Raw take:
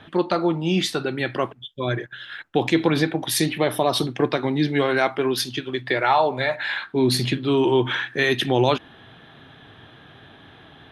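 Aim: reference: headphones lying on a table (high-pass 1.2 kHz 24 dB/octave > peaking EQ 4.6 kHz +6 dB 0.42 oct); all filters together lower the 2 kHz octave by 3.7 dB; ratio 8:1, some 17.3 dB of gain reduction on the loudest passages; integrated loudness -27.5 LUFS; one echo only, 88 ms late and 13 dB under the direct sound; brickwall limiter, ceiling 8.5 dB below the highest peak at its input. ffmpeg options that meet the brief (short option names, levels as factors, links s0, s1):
-af "equalizer=f=2000:t=o:g=-4.5,acompressor=threshold=0.0224:ratio=8,alimiter=level_in=1.68:limit=0.0631:level=0:latency=1,volume=0.596,highpass=f=1200:w=0.5412,highpass=f=1200:w=1.3066,equalizer=f=4600:t=o:w=0.42:g=6,aecho=1:1:88:0.224,volume=5.62"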